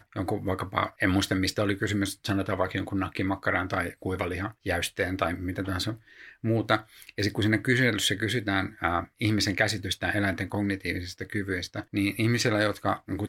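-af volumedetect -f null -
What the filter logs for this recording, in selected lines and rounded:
mean_volume: -28.2 dB
max_volume: -6.8 dB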